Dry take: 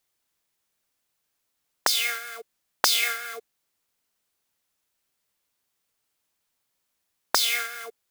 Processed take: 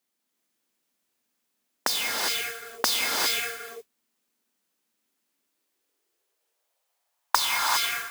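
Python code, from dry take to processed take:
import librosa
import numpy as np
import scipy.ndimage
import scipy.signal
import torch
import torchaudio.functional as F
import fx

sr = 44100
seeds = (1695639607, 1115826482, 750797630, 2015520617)

y = fx.filter_sweep_highpass(x, sr, from_hz=230.0, to_hz=980.0, start_s=5.06, end_s=7.36, q=3.8)
y = fx.mod_noise(y, sr, seeds[0], snr_db=12)
y = fx.rev_gated(y, sr, seeds[1], gate_ms=430, shape='rising', drr_db=-1.0)
y = y * 10.0 ** (-4.0 / 20.0)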